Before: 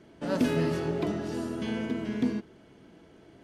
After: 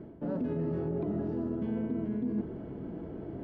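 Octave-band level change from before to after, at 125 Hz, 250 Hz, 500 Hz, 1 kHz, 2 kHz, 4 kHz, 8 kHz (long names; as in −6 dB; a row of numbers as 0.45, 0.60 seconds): −1.5 dB, −2.5 dB, −4.0 dB, −8.5 dB, below −15 dB, below −20 dB, below −30 dB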